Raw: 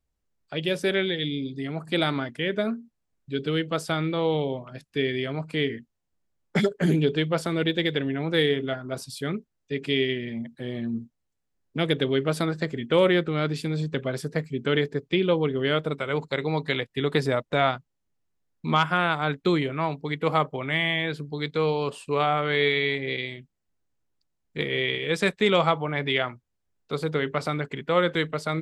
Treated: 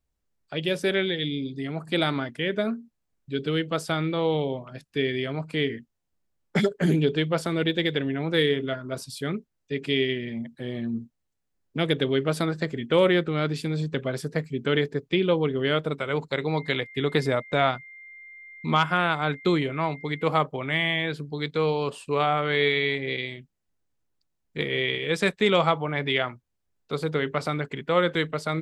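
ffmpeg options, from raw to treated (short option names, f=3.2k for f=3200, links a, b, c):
-filter_complex "[0:a]asettb=1/sr,asplit=3[a][b][c];[a]atrim=end=8.374[d];[b]atrim=start=8.37:end=9.18,asetpts=PTS-STARTPTS,afade=t=in:d=0.004:c=qsin,afade=t=out:st=0.806:d=0.004:c=qsin,asuperstop=centerf=760:order=4:qfactor=6[e];[c]atrim=start=9.176[f];[d][e]acrossfade=d=0.004:c1=hsin:c2=qsin[g];[g][f]acrossfade=d=0.004:c1=qsin:c2=hsin,asettb=1/sr,asplit=3[h][i][j];[h]atrim=end=16.564[k];[i]atrim=start=16.56:end=20.24,asetpts=PTS-STARTPTS,afade=t=in:d=0.004:c=qsin,afade=t=out:st=3.676:d=0.004:c=qsin,aeval=exprs='val(0)+0.00708*sin(2*PI*2100*n/s)':c=same[l];[j]atrim=start=20.236[m];[k][l]acrossfade=d=0.004:c1=hsin:c2=qsin[n];[n][m]acrossfade=d=0.004:c1=qsin:c2=hsin"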